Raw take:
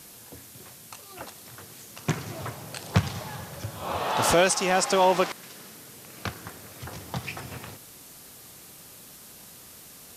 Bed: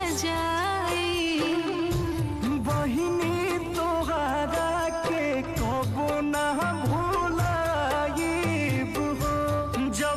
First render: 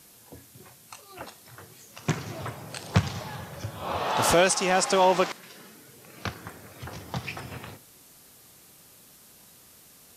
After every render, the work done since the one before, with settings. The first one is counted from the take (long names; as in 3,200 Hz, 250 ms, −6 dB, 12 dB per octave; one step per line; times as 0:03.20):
noise reduction from a noise print 6 dB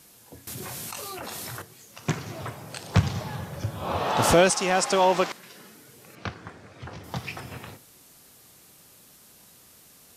0:00.47–0:01.62: envelope flattener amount 100%
0:02.98–0:04.50: low-shelf EQ 470 Hz +6 dB
0:06.15–0:07.04: high-frequency loss of the air 100 metres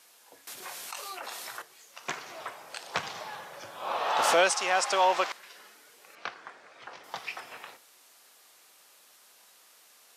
high-pass filter 690 Hz 12 dB per octave
high-shelf EQ 7,100 Hz −8.5 dB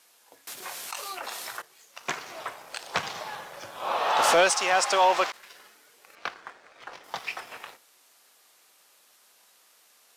leveller curve on the samples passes 1
every ending faded ahead of time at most 560 dB per second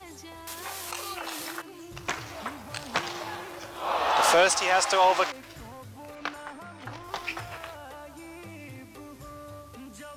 mix in bed −17.5 dB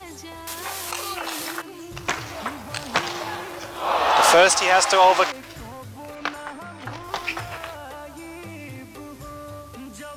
level +6 dB